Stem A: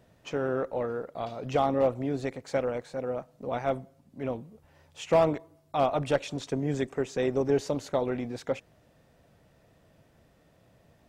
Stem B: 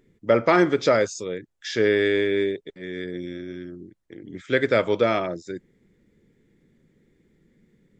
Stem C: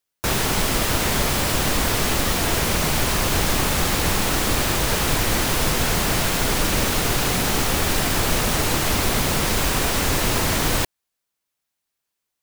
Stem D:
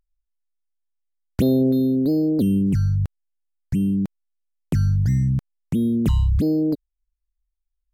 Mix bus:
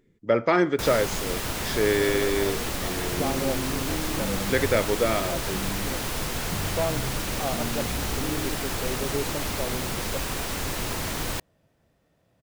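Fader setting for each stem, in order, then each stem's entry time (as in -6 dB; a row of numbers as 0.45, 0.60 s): -5.5, -3.0, -9.0, -15.0 dB; 1.65, 0.00, 0.55, 1.80 s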